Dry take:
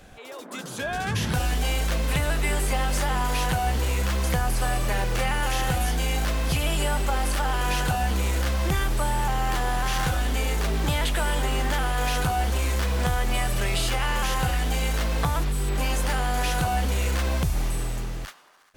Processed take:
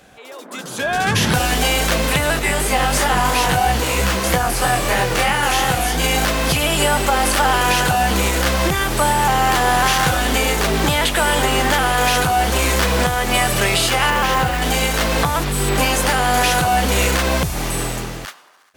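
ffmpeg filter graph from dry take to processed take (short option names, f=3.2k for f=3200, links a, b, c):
-filter_complex "[0:a]asettb=1/sr,asplit=3[a][b][c];[a]atrim=end=2.394[d];[b]atrim=start=2.39:end=6.04,asetpts=PTS-STARTPTS,afade=t=in:d=0.004:c=qsin,afade=t=out:st=3.646:d=0.004:c=qsin,flanger=delay=16:depth=6:speed=3,asoftclip=type=hard:threshold=-17.5dB[e];[c]atrim=start=6.036[f];[d][e]acrossfade=d=0.004:c1=hsin:c2=qsin[g];[g][f]acrossfade=d=0.004:c1=qsin:c2=hsin,asettb=1/sr,asplit=3[h][i][j];[h]atrim=end=14.104[k];[i]atrim=start=14.1:end=14.62,asetpts=PTS-STARTPTS,afade=t=in:d=0.004:c=qsin,afade=t=out:st=0.516:d=0.004:c=qsin,lowpass=f=2.3k:p=1,acrusher=bits=5:mode=log:mix=0:aa=0.000001[l];[j]atrim=start=14.616[m];[k][l]acrossfade=d=0.004:c1=hsin:c2=qsin[n];[n][m]acrossfade=d=0.004:c1=qsin:c2=hsin,highpass=f=190:p=1,dynaudnorm=f=220:g=9:m=11.5dB,alimiter=limit=-9.5dB:level=0:latency=1:release=378,volume=3.5dB"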